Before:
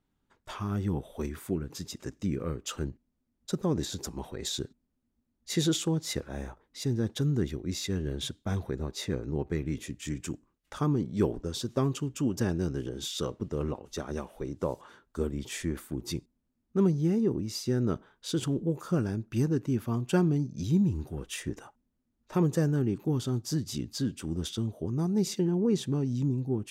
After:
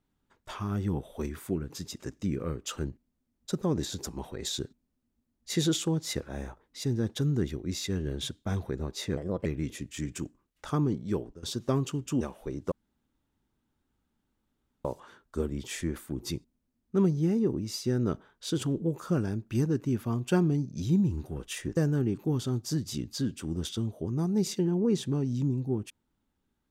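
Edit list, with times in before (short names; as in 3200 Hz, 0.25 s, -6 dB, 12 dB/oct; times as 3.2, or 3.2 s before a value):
9.17–9.54 speed 129%
11–11.51 fade out, to -17.5 dB
12.29–14.15 cut
14.66 insert room tone 2.13 s
21.58–22.57 cut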